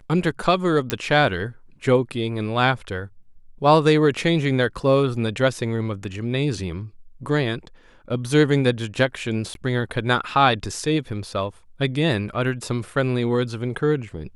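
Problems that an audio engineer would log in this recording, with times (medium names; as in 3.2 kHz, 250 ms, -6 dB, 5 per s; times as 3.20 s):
0.90 s: pop -6 dBFS
9.54–9.55 s: dropout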